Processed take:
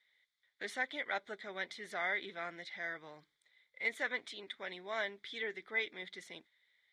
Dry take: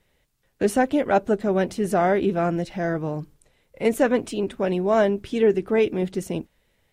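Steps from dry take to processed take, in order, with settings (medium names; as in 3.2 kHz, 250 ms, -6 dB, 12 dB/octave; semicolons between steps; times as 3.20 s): two resonant band-passes 2.7 kHz, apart 0.77 oct; trim +2 dB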